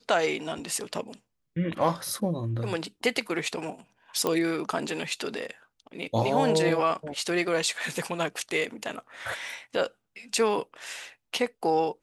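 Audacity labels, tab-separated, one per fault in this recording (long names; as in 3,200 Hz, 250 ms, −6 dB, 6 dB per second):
4.270000	4.270000	click −13 dBFS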